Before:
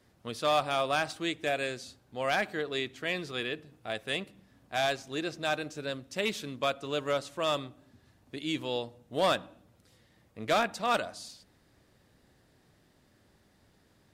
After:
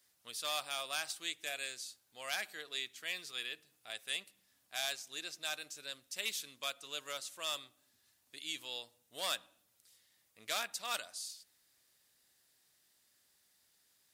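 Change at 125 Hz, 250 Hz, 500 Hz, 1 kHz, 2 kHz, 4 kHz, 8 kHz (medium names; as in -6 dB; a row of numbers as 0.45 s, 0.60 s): -25.5 dB, -22.5 dB, -18.0 dB, -13.5 dB, -7.5 dB, -2.5 dB, +3.5 dB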